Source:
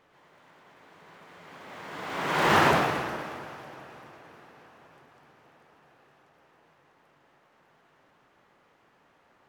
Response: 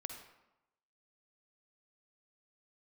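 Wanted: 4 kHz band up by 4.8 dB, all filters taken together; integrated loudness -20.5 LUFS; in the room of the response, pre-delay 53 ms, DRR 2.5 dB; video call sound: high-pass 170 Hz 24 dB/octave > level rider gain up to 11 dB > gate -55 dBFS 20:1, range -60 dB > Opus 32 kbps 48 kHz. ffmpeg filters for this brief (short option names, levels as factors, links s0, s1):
-filter_complex "[0:a]equalizer=f=4000:t=o:g=6.5,asplit=2[s0][s1];[1:a]atrim=start_sample=2205,adelay=53[s2];[s1][s2]afir=irnorm=-1:irlink=0,volume=0.944[s3];[s0][s3]amix=inputs=2:normalize=0,highpass=f=170:w=0.5412,highpass=f=170:w=1.3066,dynaudnorm=m=3.55,agate=range=0.001:threshold=0.00178:ratio=20,volume=1.58" -ar 48000 -c:a libopus -b:a 32k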